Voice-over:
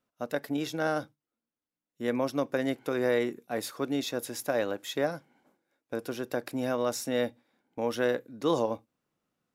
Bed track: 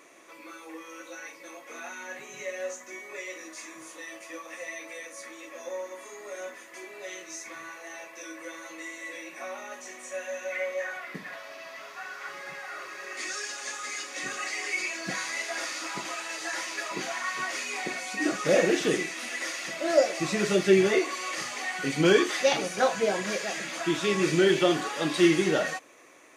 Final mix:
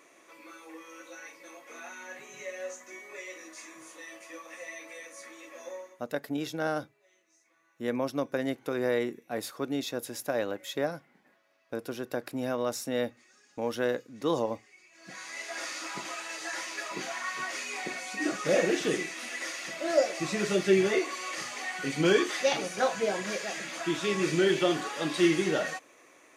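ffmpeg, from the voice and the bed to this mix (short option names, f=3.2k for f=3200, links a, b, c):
-filter_complex "[0:a]adelay=5800,volume=-1.5dB[a];[1:a]volume=20.5dB,afade=t=out:st=5.68:d=0.34:silence=0.0668344,afade=t=in:st=14.91:d=0.77:silence=0.0595662[b];[a][b]amix=inputs=2:normalize=0"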